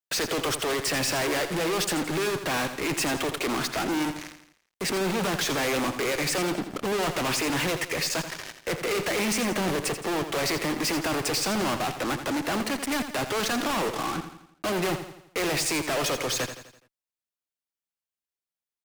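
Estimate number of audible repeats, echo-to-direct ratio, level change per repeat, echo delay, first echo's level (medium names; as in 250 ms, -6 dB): 4, -9.0 dB, -6.5 dB, 84 ms, -10.0 dB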